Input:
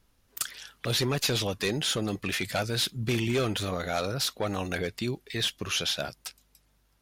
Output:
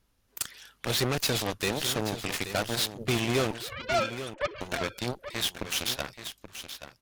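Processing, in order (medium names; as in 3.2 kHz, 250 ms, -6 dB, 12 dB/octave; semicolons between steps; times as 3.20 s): 3.51–4.61 s: formants replaced by sine waves; Chebyshev shaper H 7 -12 dB, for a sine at -17 dBFS; delay 829 ms -11 dB; trim -1 dB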